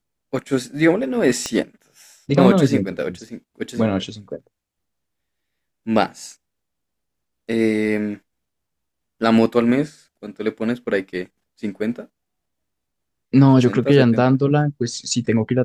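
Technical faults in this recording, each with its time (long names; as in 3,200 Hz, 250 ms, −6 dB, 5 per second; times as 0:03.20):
0:01.46: click −11 dBFS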